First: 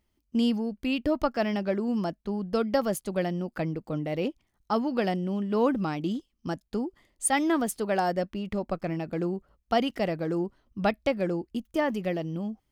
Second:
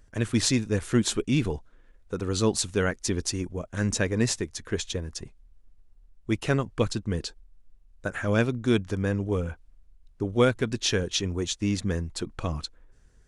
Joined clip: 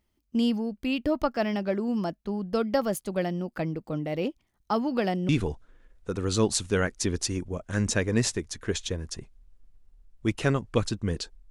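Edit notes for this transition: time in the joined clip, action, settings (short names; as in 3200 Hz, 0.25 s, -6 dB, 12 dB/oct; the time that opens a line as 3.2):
first
4.67–5.29 three-band squash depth 40%
5.29 switch to second from 1.33 s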